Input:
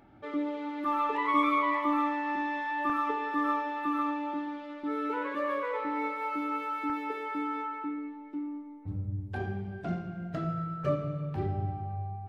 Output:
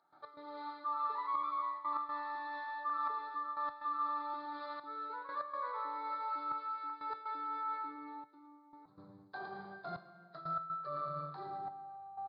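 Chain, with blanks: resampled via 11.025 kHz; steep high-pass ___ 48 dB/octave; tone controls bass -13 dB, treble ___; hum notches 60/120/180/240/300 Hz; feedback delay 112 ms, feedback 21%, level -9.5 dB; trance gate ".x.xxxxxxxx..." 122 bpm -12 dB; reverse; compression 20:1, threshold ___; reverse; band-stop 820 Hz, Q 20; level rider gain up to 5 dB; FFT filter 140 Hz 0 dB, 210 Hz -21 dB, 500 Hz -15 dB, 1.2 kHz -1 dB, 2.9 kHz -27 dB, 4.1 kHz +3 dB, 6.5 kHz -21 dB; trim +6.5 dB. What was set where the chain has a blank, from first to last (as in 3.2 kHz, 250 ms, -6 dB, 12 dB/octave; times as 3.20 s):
160 Hz, 0 dB, -41 dBFS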